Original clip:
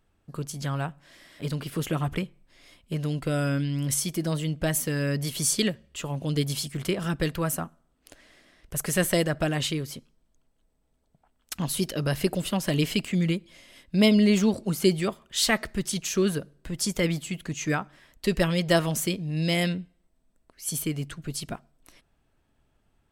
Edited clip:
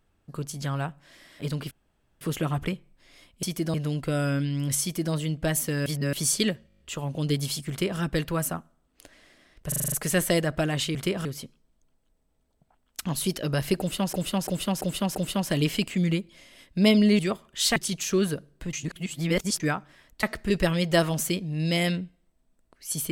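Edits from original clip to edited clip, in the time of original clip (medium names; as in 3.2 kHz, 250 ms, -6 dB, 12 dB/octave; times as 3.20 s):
1.71 s: insert room tone 0.50 s
4.01–4.32 s: copy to 2.93 s
5.05–5.32 s: reverse
5.87 s: stutter 0.02 s, 7 plays
6.77–7.07 s: copy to 9.78 s
8.75 s: stutter 0.04 s, 7 plays
12.32–12.66 s: loop, 5 plays
14.36–14.96 s: delete
15.53–15.80 s: move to 18.27 s
16.77–17.64 s: reverse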